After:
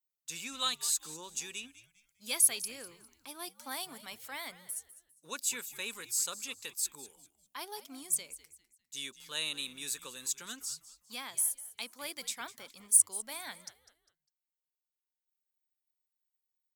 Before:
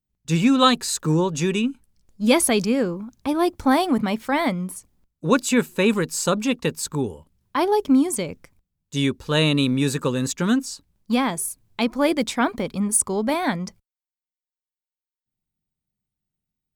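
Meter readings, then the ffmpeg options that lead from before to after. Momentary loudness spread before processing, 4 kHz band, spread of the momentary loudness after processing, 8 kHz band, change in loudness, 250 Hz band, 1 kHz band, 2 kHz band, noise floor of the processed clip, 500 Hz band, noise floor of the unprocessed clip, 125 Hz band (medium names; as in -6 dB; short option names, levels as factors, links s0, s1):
11 LU, -10.0 dB, 21 LU, -3.0 dB, -11.5 dB, -33.0 dB, -21.5 dB, -15.0 dB, under -85 dBFS, -27.5 dB, under -85 dBFS, -36.0 dB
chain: -filter_complex "[0:a]aderivative,asplit=4[s0][s1][s2][s3];[s1]adelay=201,afreqshift=-110,volume=0.15[s4];[s2]adelay=402,afreqshift=-220,volume=0.0479[s5];[s3]adelay=603,afreqshift=-330,volume=0.0153[s6];[s0][s4][s5][s6]amix=inputs=4:normalize=0,volume=0.596"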